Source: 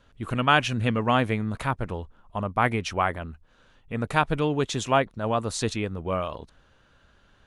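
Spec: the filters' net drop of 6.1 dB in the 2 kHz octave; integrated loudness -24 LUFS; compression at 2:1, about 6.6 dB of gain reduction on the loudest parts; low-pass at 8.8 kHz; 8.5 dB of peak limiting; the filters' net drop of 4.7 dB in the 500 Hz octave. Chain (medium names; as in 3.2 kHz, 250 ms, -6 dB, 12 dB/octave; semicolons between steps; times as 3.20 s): low-pass 8.8 kHz; peaking EQ 500 Hz -5.5 dB; peaking EQ 2 kHz -8.5 dB; compression 2:1, threshold -31 dBFS; trim +13 dB; peak limiter -12 dBFS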